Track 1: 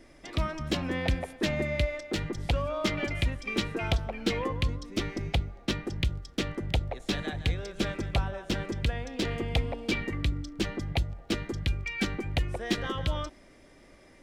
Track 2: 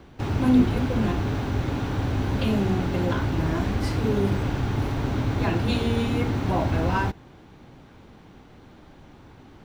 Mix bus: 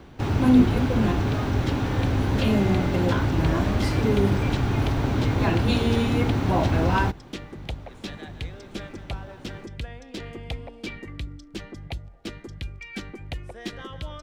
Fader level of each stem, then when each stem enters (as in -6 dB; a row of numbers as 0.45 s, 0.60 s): -5.5 dB, +2.0 dB; 0.95 s, 0.00 s